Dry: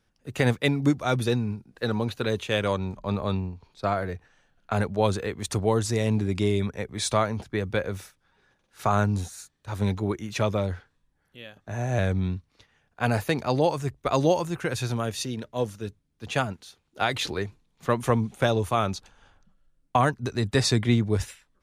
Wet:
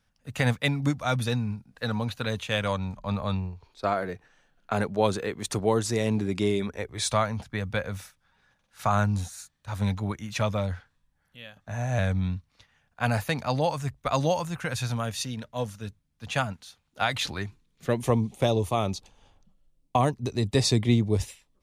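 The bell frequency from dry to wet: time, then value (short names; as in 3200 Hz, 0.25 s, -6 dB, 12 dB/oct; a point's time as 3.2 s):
bell -14 dB 0.55 oct
3.33 s 370 Hz
4.11 s 79 Hz
6.5 s 79 Hz
7.17 s 370 Hz
17.28 s 370 Hz
18.1 s 1500 Hz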